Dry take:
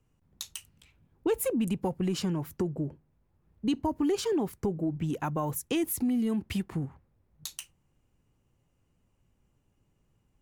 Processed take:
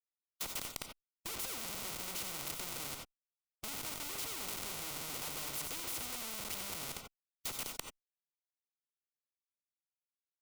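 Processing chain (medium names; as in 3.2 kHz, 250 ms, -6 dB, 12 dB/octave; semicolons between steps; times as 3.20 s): send-on-delta sampling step -49.5 dBFS; high-pass 71 Hz 12 dB/octave; hum notches 50/100/150/200/250/300/350/400 Hz; delay 206 ms -19.5 dB; Schmitt trigger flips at -45 dBFS; Butterworth band-stop 1.7 kHz, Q 3.4; gated-style reverb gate 110 ms rising, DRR 8.5 dB; spectrum-flattening compressor 4:1; trim +5 dB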